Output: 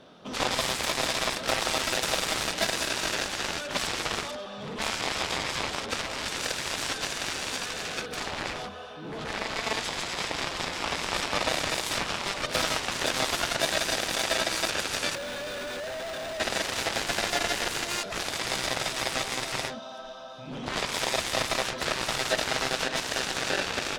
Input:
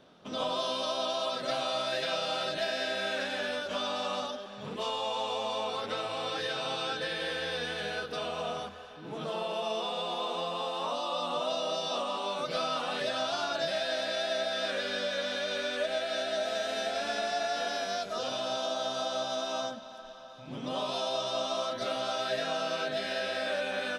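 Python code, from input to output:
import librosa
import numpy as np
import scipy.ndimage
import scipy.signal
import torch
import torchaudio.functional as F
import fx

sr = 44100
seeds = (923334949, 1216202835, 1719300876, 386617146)

y = fx.schmitt(x, sr, flips_db=-43.0, at=(15.15, 16.4))
y = fx.cheby_harmonics(y, sr, harmonics=(3, 5, 7), levels_db=(-16, -37, -14), full_scale_db=-19.0)
y = y * 10.0 ** (8.0 / 20.0)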